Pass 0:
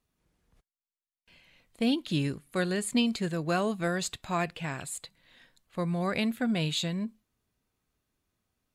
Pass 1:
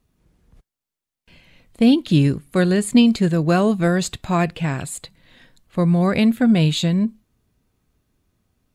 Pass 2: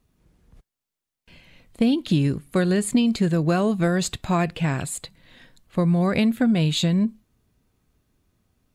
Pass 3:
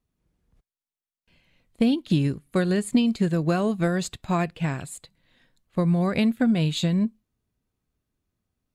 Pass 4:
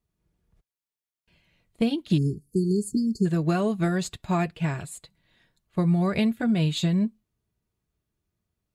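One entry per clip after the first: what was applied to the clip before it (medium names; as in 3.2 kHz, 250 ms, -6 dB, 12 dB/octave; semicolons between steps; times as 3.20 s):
bass shelf 440 Hz +9 dB; trim +6.5 dB
compression 6:1, threshold -16 dBFS, peak gain reduction 7.5 dB
upward expansion 1.5:1, over -39 dBFS
comb of notches 260 Hz; spectral selection erased 2.18–3.26 s, 460–4300 Hz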